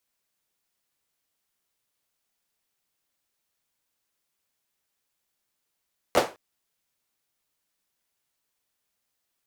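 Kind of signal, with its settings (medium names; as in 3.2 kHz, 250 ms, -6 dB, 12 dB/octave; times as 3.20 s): hand clap length 0.21 s, bursts 3, apart 11 ms, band 530 Hz, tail 0.28 s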